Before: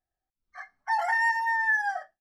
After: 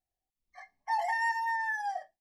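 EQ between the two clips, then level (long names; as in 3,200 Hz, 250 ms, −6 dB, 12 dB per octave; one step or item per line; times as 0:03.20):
Butterworth band-reject 1,400 Hz, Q 1.6
−2.5 dB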